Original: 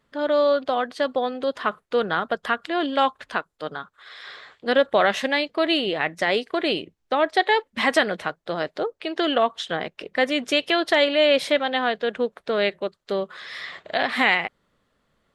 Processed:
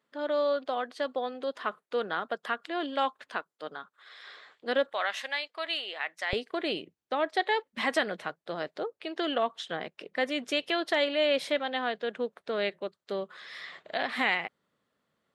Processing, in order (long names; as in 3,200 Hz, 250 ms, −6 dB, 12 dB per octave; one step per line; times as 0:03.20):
high-pass filter 230 Hz 12 dB per octave, from 0:04.92 900 Hz, from 0:06.33 130 Hz
level −8 dB